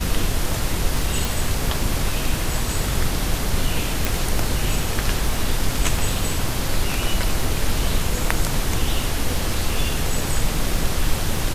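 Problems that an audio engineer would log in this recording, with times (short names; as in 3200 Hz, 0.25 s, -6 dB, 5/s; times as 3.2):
crackle 15/s -23 dBFS
1.25 pop
4.05 pop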